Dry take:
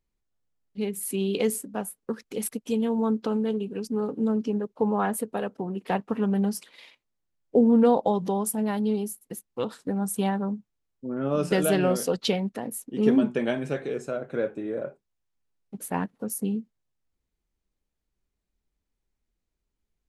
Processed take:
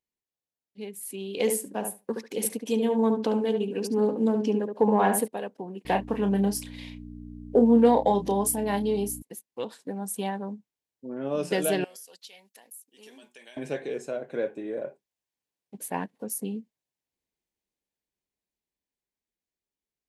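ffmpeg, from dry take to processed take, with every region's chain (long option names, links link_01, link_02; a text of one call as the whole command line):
ffmpeg -i in.wav -filter_complex "[0:a]asettb=1/sr,asplit=3[link_01][link_02][link_03];[link_01]atrim=end=1.374[link_04];[link_02]atrim=start=1.37:end=5.28,asetpts=PTS-STARTPTS,afade=type=in:duration=0.004:curve=qsin,afade=type=out:start_time=3.906:duration=0.004:curve=qsin,asplit=2[link_05][link_06];[link_06]adelay=71,lowpass=frequency=1800:poles=1,volume=-5.5dB,asplit=2[link_07][link_08];[link_08]adelay=71,lowpass=frequency=1800:poles=1,volume=0.15,asplit=2[link_09][link_10];[link_10]adelay=71,lowpass=frequency=1800:poles=1,volume=0.15[link_11];[link_05][link_07][link_09][link_11]amix=inputs=4:normalize=0,atrim=end_sample=172431,acontrast=89[link_12];[link_03]atrim=start=5.276[link_13];[link_04][link_12]acrossfade=duration=0.004:curve1=hsin:curve2=qsin[link_14];[link_14][link_13]acrossfade=duration=0.004:curve1=qsin:curve2=hsin,asettb=1/sr,asplit=3[link_15][link_16][link_17];[link_15]atrim=end=5.854[link_18];[link_16]atrim=start=5.85:end=9.22,asetpts=PTS-STARTPTS,afade=type=in:duration=0.004:curve=qsin,afade=type=out:start_time=3.366:duration=0.004:curve=qsin,acontrast=33,aeval=exprs='val(0)+0.0398*(sin(2*PI*60*n/s)+sin(2*PI*2*60*n/s)/2+sin(2*PI*3*60*n/s)/3+sin(2*PI*4*60*n/s)/4+sin(2*PI*5*60*n/s)/5)':channel_layout=same,asplit=2[link_19][link_20];[link_20]adelay=30,volume=-8dB[link_21];[link_19][link_21]amix=inputs=2:normalize=0,atrim=end_sample=148617[link_22];[link_17]atrim=start=9.216[link_23];[link_18][link_22]acrossfade=duration=0.004:curve1=hsin:curve2=qsin[link_24];[link_24][link_23]acrossfade=duration=0.004:curve1=qsin:curve2=hsin,asettb=1/sr,asplit=3[link_25][link_26][link_27];[link_25]atrim=end=11.844[link_28];[link_26]atrim=start=11.84:end=13.57,asetpts=PTS-STARTPTS,afade=type=in:duration=0.004:curve=qsin,afade=type=out:start_time=1.726:duration=0.004:curve=qsin,aderivative,acompressor=threshold=-43dB:ratio=5:attack=3.2:release=140:knee=1:detection=peak[link_29];[link_27]atrim=start=13.566[link_30];[link_28][link_29]acrossfade=duration=0.004:curve1=hsin:curve2=qsin[link_31];[link_31][link_30]acrossfade=duration=0.004:curve1=qsin:curve2=hsin,highpass=frequency=340:poles=1,equalizer=frequency=1300:width=5.8:gain=-13,dynaudnorm=framelen=440:gausssize=13:maxgain=6dB,volume=-5.5dB" out.wav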